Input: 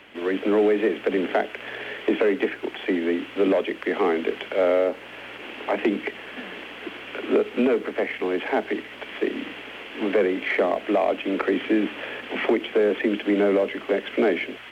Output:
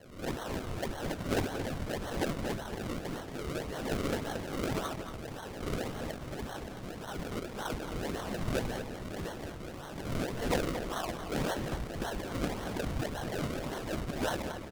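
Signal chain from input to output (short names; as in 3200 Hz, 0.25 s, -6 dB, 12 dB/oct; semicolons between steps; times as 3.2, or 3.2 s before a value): phase scrambler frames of 0.2 s; Bessel high-pass 1500 Hz, order 6; resonant high shelf 2100 Hz -9 dB, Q 3; decimation with a swept rate 36×, swing 100% 1.8 Hz; outdoor echo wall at 39 m, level -8 dB; Doppler distortion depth 0.32 ms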